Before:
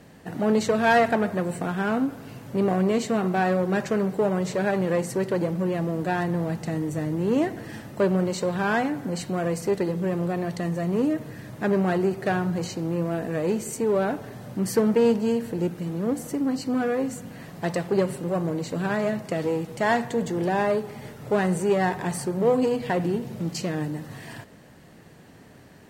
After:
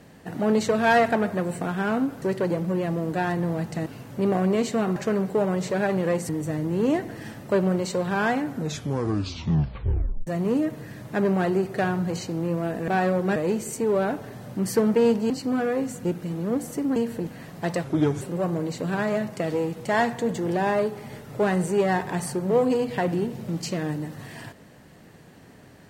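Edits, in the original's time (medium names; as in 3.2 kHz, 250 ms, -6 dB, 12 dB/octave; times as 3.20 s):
3.32–3.80 s: move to 13.36 s
5.13–6.77 s: move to 2.22 s
8.95 s: tape stop 1.80 s
15.30–15.61 s: swap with 16.52–17.27 s
17.84–18.13 s: speed 78%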